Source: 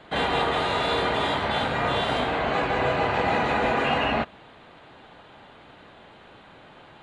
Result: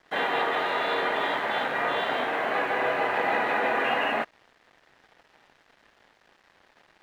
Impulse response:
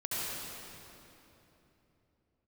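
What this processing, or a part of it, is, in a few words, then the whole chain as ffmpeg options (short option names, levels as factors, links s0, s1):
pocket radio on a weak battery: -af "highpass=320,lowpass=3200,aeval=exprs='sgn(val(0))*max(abs(val(0))-0.00355,0)':c=same,equalizer=f=1800:t=o:w=0.37:g=6,volume=0.841"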